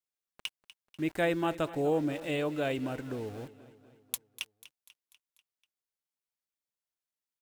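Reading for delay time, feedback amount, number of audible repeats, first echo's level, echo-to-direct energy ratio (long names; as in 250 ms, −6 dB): 245 ms, 56%, 4, −17.0 dB, −15.5 dB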